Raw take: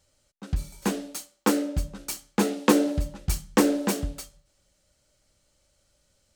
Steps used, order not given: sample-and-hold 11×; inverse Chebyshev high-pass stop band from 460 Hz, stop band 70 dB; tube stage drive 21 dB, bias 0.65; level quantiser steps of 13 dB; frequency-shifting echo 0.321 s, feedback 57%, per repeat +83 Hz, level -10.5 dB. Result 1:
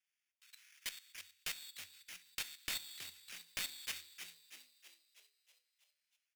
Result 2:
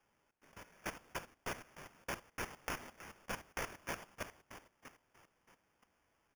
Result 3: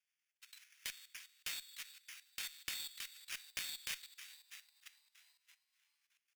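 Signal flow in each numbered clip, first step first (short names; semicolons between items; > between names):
sample-and-hold > inverse Chebyshev high-pass > tube stage > level quantiser > frequency-shifting echo; inverse Chebyshev high-pass > tube stage > frequency-shifting echo > sample-and-hold > level quantiser; sample-and-hold > frequency-shifting echo > level quantiser > inverse Chebyshev high-pass > tube stage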